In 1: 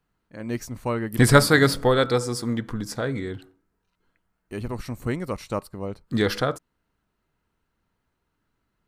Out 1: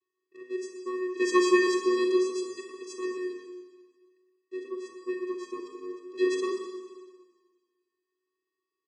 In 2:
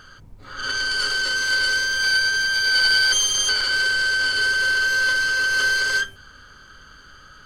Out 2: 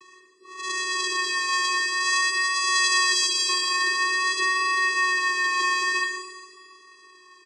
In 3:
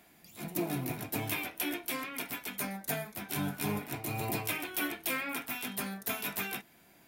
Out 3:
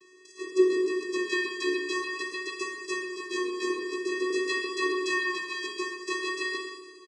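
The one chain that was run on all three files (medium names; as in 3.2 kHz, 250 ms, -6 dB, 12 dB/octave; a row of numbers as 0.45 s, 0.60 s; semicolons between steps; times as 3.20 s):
vocoder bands 8, square 368 Hz; treble shelf 2.9 kHz +11.5 dB; Schroeder reverb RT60 1.5 s, combs from 30 ms, DRR 3 dB; vibrato 0.49 Hz 20 cents; speakerphone echo 120 ms, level -9 dB; peak normalisation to -12 dBFS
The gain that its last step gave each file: -5.0 dB, -7.0 dB, +7.5 dB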